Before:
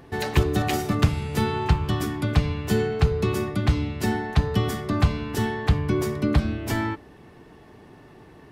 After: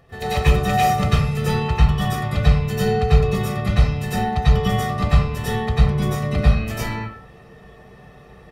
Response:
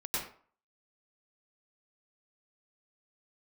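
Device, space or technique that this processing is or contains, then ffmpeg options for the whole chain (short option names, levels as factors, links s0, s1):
microphone above a desk: -filter_complex "[0:a]aecho=1:1:1.6:0.79[s0];[1:a]atrim=start_sample=2205[s1];[s0][s1]afir=irnorm=-1:irlink=0,equalizer=f=2600:t=o:w=0.77:g=2.5,volume=0.75"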